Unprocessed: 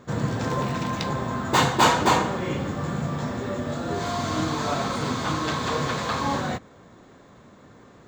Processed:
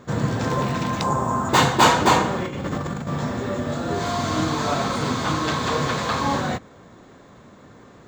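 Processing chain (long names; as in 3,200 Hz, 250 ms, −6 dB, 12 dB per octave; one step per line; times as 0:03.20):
0:01.01–0:01.49: graphic EQ with 10 bands 1,000 Hz +8 dB, 2,000 Hz −7 dB, 4,000 Hz −11 dB, 8,000 Hz +10 dB
0:02.43–0:03.08: compressor whose output falls as the input rises −30 dBFS, ratio −0.5
level +3 dB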